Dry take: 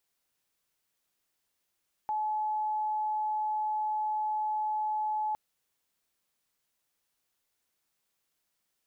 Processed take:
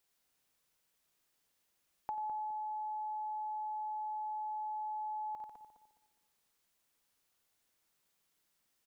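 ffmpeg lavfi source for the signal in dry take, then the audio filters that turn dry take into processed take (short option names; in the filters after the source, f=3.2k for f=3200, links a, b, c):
-f lavfi -i "aevalsrc='0.0398*sin(2*PI*856*t)':d=3.26:s=44100"
-filter_complex "[0:a]asplit=2[a][b];[b]aecho=0:1:52|90|145|203:0.266|0.376|0.188|0.126[c];[a][c]amix=inputs=2:normalize=0,acompressor=threshold=-38dB:ratio=6,asplit=2[d][e];[e]adelay=207,lowpass=f=820:p=1,volume=-6.5dB,asplit=2[f][g];[g]adelay=207,lowpass=f=820:p=1,volume=0.4,asplit=2[h][i];[i]adelay=207,lowpass=f=820:p=1,volume=0.4,asplit=2[j][k];[k]adelay=207,lowpass=f=820:p=1,volume=0.4,asplit=2[l][m];[m]adelay=207,lowpass=f=820:p=1,volume=0.4[n];[f][h][j][l][n]amix=inputs=5:normalize=0[o];[d][o]amix=inputs=2:normalize=0"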